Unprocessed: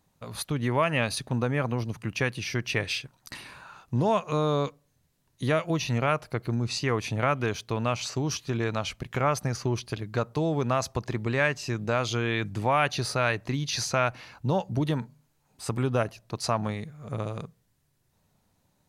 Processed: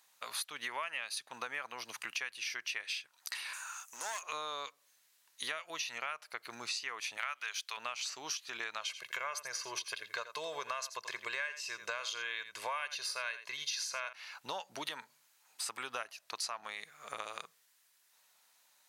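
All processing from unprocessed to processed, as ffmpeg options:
-filter_complex "[0:a]asettb=1/sr,asplit=3[a][b][c];[a]atrim=end=3.534[d];[b]atrim=start=3.53:end=4.23,asetpts=PTS-STARTPTS,afade=t=in:d=0.004:c=qsin,afade=t=out:st=0.696:d=0.004:c=qsin,highpass=f=1.2k:p=1,highshelf=f=5.3k:t=q:w=3:g=8,aeval=exprs='clip(val(0),-1,0.015)':c=same[e];[c]atrim=start=4.226[f];[d][e]acrossfade=d=0.004:c1=hsin:c2=qsin[g];[g][f]acrossfade=d=0.004:c1=qsin:c2=hsin,asettb=1/sr,asplit=3[h][i][j];[h]atrim=end=7.174[k];[i]atrim=start=7.17:end=7.77,asetpts=PTS-STARTPTS,afade=t=in:d=0.004:c=qsin,afade=t=out:st=0.596:d=0.004:c=qsin,highpass=380,tiltshelf=f=710:g=-8[l];[j]atrim=start=7.766[m];[k][l]acrossfade=d=0.004:c1=hsin:c2=qsin[n];[n][m]acrossfade=d=0.004:c1=qsin:c2=hsin,asettb=1/sr,asplit=3[o][p][q];[o]atrim=end=8.814[r];[p]atrim=start=8.81:end=14.13,asetpts=PTS-STARTPTS,afade=t=in:d=0.004:c=qsin,afade=t=out:st=5.316:d=0.004:c=qsin,aecho=1:1:1.9:0.68,atrim=end_sample=234612,aecho=1:1:84:0.211,atrim=end_sample=234612[s];[q]atrim=start=14.126[t];[r][s]acrossfade=d=0.004:c1=hsin:c2=qsin[u];[u][t]acrossfade=d=0.004:c1=qsin:c2=hsin,highpass=1.4k,acompressor=threshold=-45dB:ratio=6,volume=8dB"

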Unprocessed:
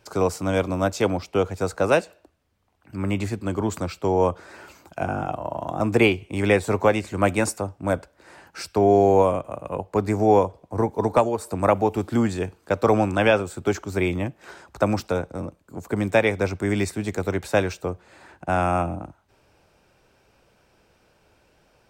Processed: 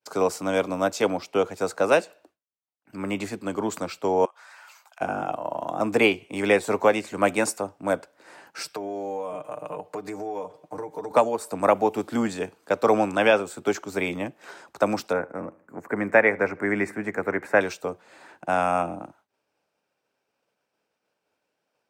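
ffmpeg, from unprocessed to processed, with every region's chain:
-filter_complex "[0:a]asettb=1/sr,asplit=3[a][b][c];[a]atrim=end=4.254[d];[b]atrim=start=4.25:end=5.01,asetpts=PTS-STARTPTS,afade=t=in:d=0.004:c=qsin,afade=t=out:st=0.756:d=0.004:c=qsin,highpass=f=830:w=0.5412,highpass=f=830:w=1.3066,acompressor=threshold=-44dB:ratio=5:attack=3.2:release=140:knee=1:detection=peak[e];[c]atrim=start=5.006[f];[d][e]acrossfade=d=0.004:c1=hsin:c2=qsin[g];[g][f]acrossfade=d=0.004:c1=qsin:c2=hsin,asettb=1/sr,asplit=3[h][i][j];[h]atrim=end=8.614[k];[i]atrim=start=8.61:end=11.11,asetpts=PTS-STARTPTS,afade=t=in:d=0.004:c=qsin,afade=t=out:st=2.496:d=0.004:c=qsin,equalizer=f=260:t=o:w=0.28:g=-5.5,aecho=1:1:6.6:0.76,atrim=end_sample=110250,acompressor=threshold=-28dB:ratio=8:attack=3.2:release=140:knee=1:detection=peak[l];[j]atrim=start=11.106[m];[k][l]acrossfade=d=0.004:c1=hsin:c2=qsin[n];[n][m]acrossfade=d=0.004:c1=qsin:c2=hsin,asettb=1/sr,asplit=3[o][p][q];[o]atrim=end=15.134[r];[p]atrim=start=15.13:end=17.61,asetpts=PTS-STARTPTS,afade=t=in:d=0.004:c=qsin,afade=t=out:st=2.476:d=0.004:c=qsin,highshelf=f=2.6k:t=q:w=3:g=-11,asplit=2[s][t];[t]adelay=78,lowpass=f=2k:p=1,volume=-22dB,asplit=2[u][v];[v]adelay=78,lowpass=f=2k:p=1,volume=0.52,asplit=2[w][x];[x]adelay=78,lowpass=f=2k:p=1,volume=0.52,asplit=2[y][z];[z]adelay=78,lowpass=f=2k:p=1,volume=0.52[aa];[s][u][w][y][aa]amix=inputs=5:normalize=0,atrim=end_sample=109368[ab];[q]atrim=start=17.606[ac];[r][ab]acrossfade=d=0.004:c1=hsin:c2=qsin[ad];[ad][ac]acrossfade=d=0.004:c1=qsin:c2=hsin,highpass=240,agate=range=-33dB:threshold=-51dB:ratio=3:detection=peak,bandreject=f=360:w=12"

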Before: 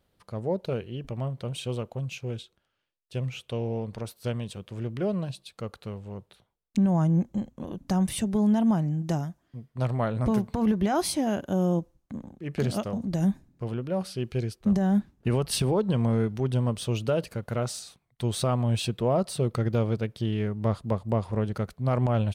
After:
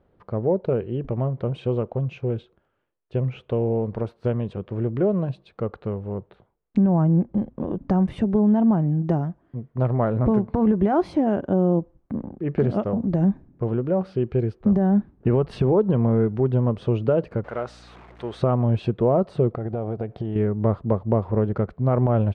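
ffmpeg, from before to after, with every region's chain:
-filter_complex "[0:a]asettb=1/sr,asplit=3[a][b][c];[a]atrim=end=17.444[d];[b]atrim=start=17.44:end=18.41,asetpts=PTS-STARTPTS,afade=t=in:d=0.004:c=qsin,afade=t=out:st=0.966:d=0.004:c=qsin,aeval=exprs='val(0)+0.5*0.0106*sgn(val(0))':c=same,highpass=f=1.2k:p=1,aeval=exprs='val(0)+0.00141*(sin(2*PI*60*n/s)+sin(2*PI*2*60*n/s)/2+sin(2*PI*3*60*n/s)/3+sin(2*PI*4*60*n/s)/4+sin(2*PI*5*60*n/s)/5)':c=same[e];[c]atrim=start=18.406[f];[d][e]acrossfade=d=0.004:c1=hsin:c2=qsin[g];[g][f]acrossfade=d=0.004:c1=qsin:c2=hsin,asettb=1/sr,asplit=3[h][i][j];[h]atrim=end=19.524[k];[i]atrim=start=19.52:end=20.36,asetpts=PTS-STARTPTS,afade=t=in:d=0.004:c=qsin,afade=t=out:st=0.836:d=0.004:c=qsin,lowpass=9.5k,equalizer=f=720:t=o:w=0.39:g=13,acompressor=threshold=-32dB:ratio=12:attack=3.2:release=140:knee=1:detection=peak[l];[j]atrim=start=20.356[m];[k][l]acrossfade=d=0.004:c1=hsin:c2=qsin[n];[n][m]acrossfade=d=0.004:c1=qsin:c2=hsin,equalizer=f=390:t=o:w=0.86:g=4.5,acompressor=threshold=-31dB:ratio=1.5,lowpass=1.4k,volume=8dB"

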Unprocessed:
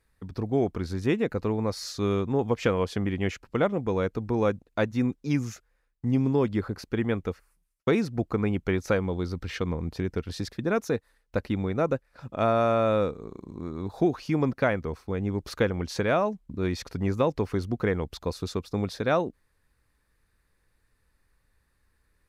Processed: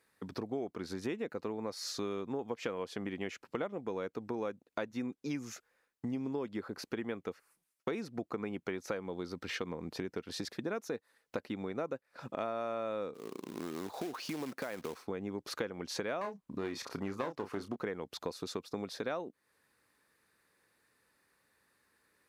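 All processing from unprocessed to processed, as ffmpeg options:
-filter_complex "[0:a]asettb=1/sr,asplit=3[a][b][c];[a]atrim=end=13.144[d];[b]atrim=start=13.14:end=15.03,asetpts=PTS-STARTPTS,afade=t=in:d=0.004:c=qsin,afade=t=out:st=1.886:d=0.004:c=qsin,lowshelf=f=110:g=-9,acompressor=threshold=-30dB:ratio=8:attack=3.2:release=140:knee=1:detection=peak,acrusher=bits=3:mode=log:mix=0:aa=0.000001[e];[c]atrim=start=15.026[f];[d][e]acrossfade=d=0.004:c1=hsin:c2=qsin[g];[g][f]acrossfade=d=0.004:c1=qsin:c2=hsin,asettb=1/sr,asplit=3[h][i][j];[h]atrim=end=16.214[k];[i]atrim=start=16.21:end=17.76,asetpts=PTS-STARTPTS,afade=t=in:d=0.004:c=qsin,afade=t=out:st=1.546:d=0.004:c=qsin,equalizer=f=1.1k:t=o:w=0.52:g=7,aeval=exprs='clip(val(0),-1,0.0562)':c=same,asplit=2[l][m];[m]adelay=30,volume=-9dB[n];[l][n]amix=inputs=2:normalize=0,atrim=end_sample=68355[o];[j]atrim=start=17.756[p];[k][o]acrossfade=d=0.004:c1=hsin:c2=qsin[q];[q][p]acrossfade=d=0.004:c1=qsin:c2=hsin,highpass=240,acompressor=threshold=-39dB:ratio=4,volume=2.5dB"

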